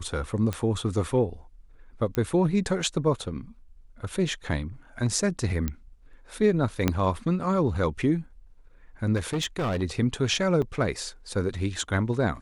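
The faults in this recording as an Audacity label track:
0.530000	0.530000	pop -15 dBFS
2.150000	2.150000	pop -15 dBFS
5.680000	5.680000	pop -15 dBFS
6.880000	6.880000	pop -8 dBFS
9.160000	9.830000	clipped -23.5 dBFS
10.620000	10.630000	gap 5.8 ms

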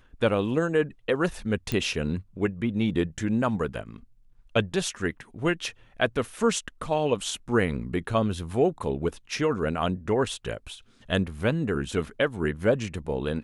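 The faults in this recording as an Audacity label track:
1.720000	1.720000	pop -14 dBFS

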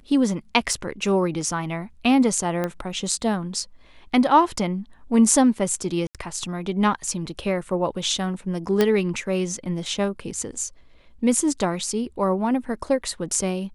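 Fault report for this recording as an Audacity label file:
0.730000	0.730000	gap 2 ms
2.640000	2.640000	pop -13 dBFS
6.070000	6.150000	gap 77 ms
8.810000	8.810000	pop -6 dBFS

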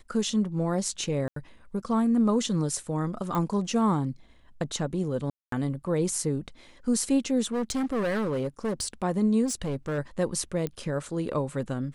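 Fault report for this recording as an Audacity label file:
1.280000	1.360000	gap 83 ms
3.350000	3.350000	pop -17 dBFS
5.300000	5.520000	gap 0.223 s
7.440000	8.880000	clipped -24.5 dBFS
9.450000	9.990000	clipped -26 dBFS
10.670000	10.670000	pop -18 dBFS

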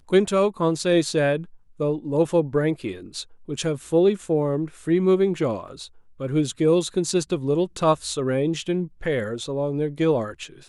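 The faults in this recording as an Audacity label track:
5.680000	5.680000	gap 2.6 ms

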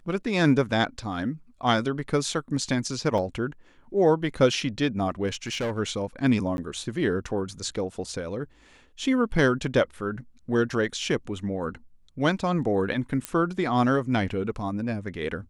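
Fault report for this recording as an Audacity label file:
3.180000	3.180000	gap 2 ms
5.270000	5.790000	clipped -24.5 dBFS
6.570000	6.580000	gap 11 ms
13.250000	13.250000	pop -12 dBFS

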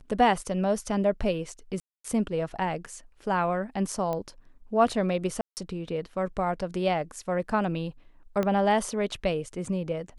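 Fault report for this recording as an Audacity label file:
1.800000	2.040000	gap 0.244 s
4.130000	4.130000	pop -19 dBFS
5.410000	5.570000	gap 0.159 s
8.430000	8.430000	pop -15 dBFS

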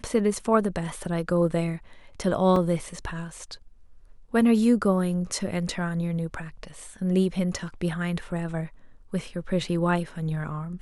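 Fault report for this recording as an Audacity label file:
2.560000	2.560000	gap 2.6 ms

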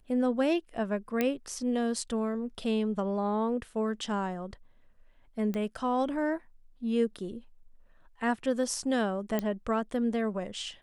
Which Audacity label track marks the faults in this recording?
1.210000	1.210000	pop -14 dBFS
5.540000	5.540000	pop -22 dBFS
9.390000	9.390000	pop -16 dBFS

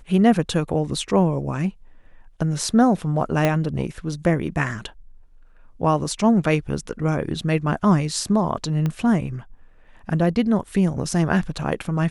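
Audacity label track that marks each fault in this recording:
3.450000	3.450000	pop -6 dBFS
8.860000	8.860000	pop -13 dBFS

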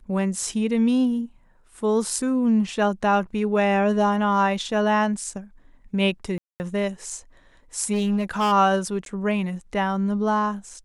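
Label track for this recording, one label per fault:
6.380000	6.600000	gap 0.219 s
7.920000	8.530000	clipped -18 dBFS
9.050000	9.060000	gap 12 ms

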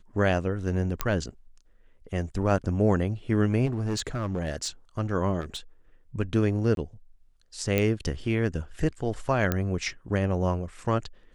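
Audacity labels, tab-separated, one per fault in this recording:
1.010000	1.010000	pop -9 dBFS
3.650000	4.680000	clipped -24 dBFS
5.400000	5.580000	clipped -29.5 dBFS
6.750000	6.770000	gap 22 ms
7.780000	7.780000	pop -11 dBFS
9.520000	9.520000	pop -11 dBFS

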